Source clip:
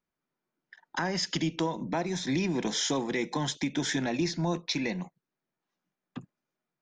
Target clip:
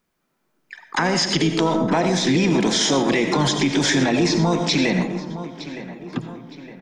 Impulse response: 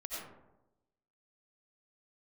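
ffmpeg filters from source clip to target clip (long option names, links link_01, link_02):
-filter_complex "[0:a]asplit=2[link_01][link_02];[link_02]asetrate=58866,aresample=44100,atempo=0.749154,volume=-10dB[link_03];[link_01][link_03]amix=inputs=2:normalize=0,acrossover=split=7700[link_04][link_05];[link_05]acompressor=threshold=-59dB:ratio=4:attack=1:release=60[link_06];[link_04][link_06]amix=inputs=2:normalize=0,asplit=2[link_07][link_08];[link_08]adelay=913,lowpass=frequency=3300:poles=1,volume=-16.5dB,asplit=2[link_09][link_10];[link_10]adelay=913,lowpass=frequency=3300:poles=1,volume=0.49,asplit=2[link_11][link_12];[link_12]adelay=913,lowpass=frequency=3300:poles=1,volume=0.49,asplit=2[link_13][link_14];[link_14]adelay=913,lowpass=frequency=3300:poles=1,volume=0.49[link_15];[link_07][link_09][link_11][link_13][link_15]amix=inputs=5:normalize=0,asplit=2[link_16][link_17];[1:a]atrim=start_sample=2205,highshelf=frequency=7700:gain=6.5[link_18];[link_17][link_18]afir=irnorm=-1:irlink=0,volume=-6dB[link_19];[link_16][link_19]amix=inputs=2:normalize=0,alimiter=level_in=20.5dB:limit=-1dB:release=50:level=0:latency=1,volume=-9dB"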